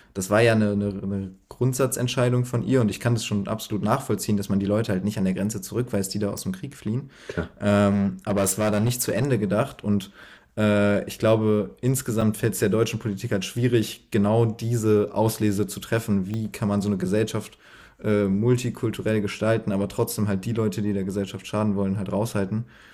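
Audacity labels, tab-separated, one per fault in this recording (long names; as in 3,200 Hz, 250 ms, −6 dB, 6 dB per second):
6.380000	6.380000	click
7.910000	9.250000	clipping −18 dBFS
12.210000	12.220000	drop-out 5.2 ms
16.340000	16.340000	click −19 dBFS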